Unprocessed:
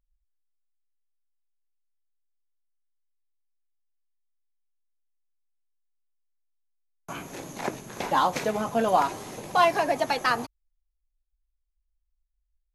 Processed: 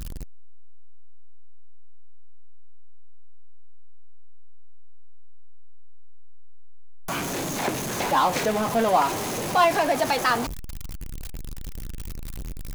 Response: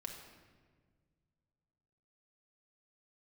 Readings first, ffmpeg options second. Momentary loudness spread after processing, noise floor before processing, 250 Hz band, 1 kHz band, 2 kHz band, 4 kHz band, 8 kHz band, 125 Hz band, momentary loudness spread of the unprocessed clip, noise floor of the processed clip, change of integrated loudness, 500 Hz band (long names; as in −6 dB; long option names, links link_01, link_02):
19 LU, −78 dBFS, +4.5 dB, +2.0 dB, +3.0 dB, +4.5 dB, +9.0 dB, +8.0 dB, 16 LU, −32 dBFS, +2.0 dB, +3.0 dB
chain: -af "aeval=exprs='val(0)+0.5*0.0531*sgn(val(0))':channel_layout=same"